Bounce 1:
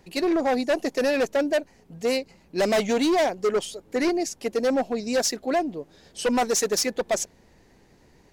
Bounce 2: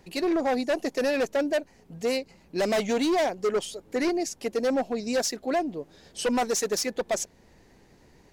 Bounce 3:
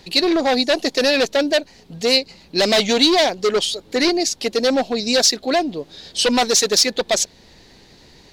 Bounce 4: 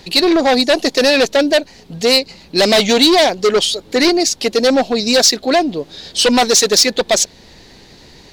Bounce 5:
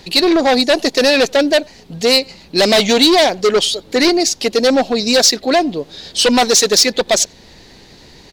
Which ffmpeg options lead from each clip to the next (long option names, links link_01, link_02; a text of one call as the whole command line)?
ffmpeg -i in.wav -af "alimiter=limit=-20.5dB:level=0:latency=1:release=288" out.wav
ffmpeg -i in.wav -af "equalizer=frequency=4000:width_type=o:width=1:gain=14.5,volume=7dB" out.wav
ffmpeg -i in.wav -af "acontrast=72,volume=-1dB" out.wav
ffmpeg -i in.wav -filter_complex "[0:a]asplit=2[link_01][link_02];[link_02]adelay=90,highpass=300,lowpass=3400,asoftclip=type=hard:threshold=-10dB,volume=-27dB[link_03];[link_01][link_03]amix=inputs=2:normalize=0" out.wav